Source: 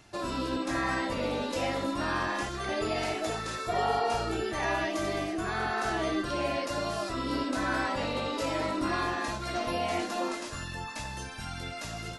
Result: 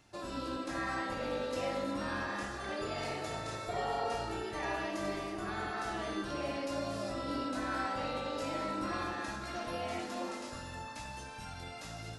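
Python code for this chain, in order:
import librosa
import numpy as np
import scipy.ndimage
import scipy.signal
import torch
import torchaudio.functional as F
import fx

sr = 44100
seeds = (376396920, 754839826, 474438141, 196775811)

y = fx.rev_fdn(x, sr, rt60_s=3.0, lf_ratio=1.0, hf_ratio=0.55, size_ms=11.0, drr_db=3.0)
y = y * librosa.db_to_amplitude(-8.0)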